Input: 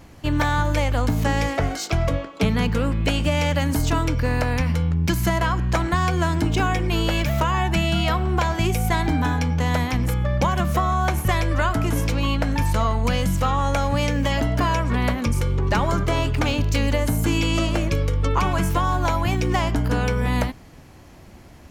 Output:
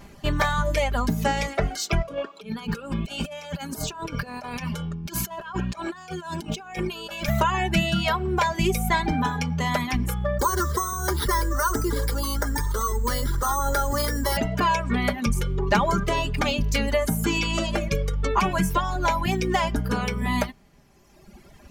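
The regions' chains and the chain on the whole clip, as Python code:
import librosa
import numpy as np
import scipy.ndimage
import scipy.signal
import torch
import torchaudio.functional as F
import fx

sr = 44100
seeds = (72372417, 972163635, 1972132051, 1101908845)

y = fx.chain(x, sr, fx.highpass(hz=240.0, slope=6),
    fx.notch(hz=2000.0, q=6.0),
    fx.over_compress(threshold_db=-29.0, ratio=-0.5), at=(2.02, 7.28))
y = fx.chain(y, sr, fx.resample_bad(factor=6, down='none', up='hold'),
    fx.fixed_phaser(hz=690.0, stages=6),
    fx.env_flatten(amount_pct=100), at=(10.39, 14.37))
y = fx.dereverb_blind(y, sr, rt60_s=1.8)
y = y + 0.58 * np.pad(y, (int(5.0 * sr / 1000.0), 0))[:len(y)]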